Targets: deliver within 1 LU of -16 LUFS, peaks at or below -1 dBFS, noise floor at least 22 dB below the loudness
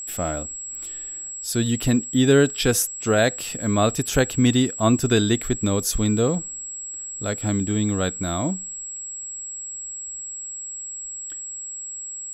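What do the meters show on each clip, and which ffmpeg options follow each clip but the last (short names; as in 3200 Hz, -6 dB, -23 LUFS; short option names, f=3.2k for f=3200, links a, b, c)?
steady tone 7700 Hz; tone level -31 dBFS; loudness -23.5 LUFS; peak -5.5 dBFS; loudness target -16.0 LUFS
-> -af "bandreject=f=7.7k:w=30"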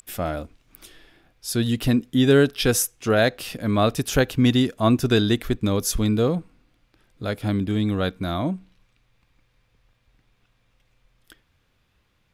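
steady tone none; loudness -22.0 LUFS; peak -6.0 dBFS; loudness target -16.0 LUFS
-> -af "volume=6dB,alimiter=limit=-1dB:level=0:latency=1"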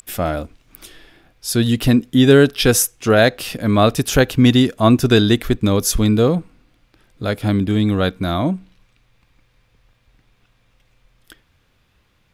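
loudness -16.0 LUFS; peak -1.0 dBFS; noise floor -61 dBFS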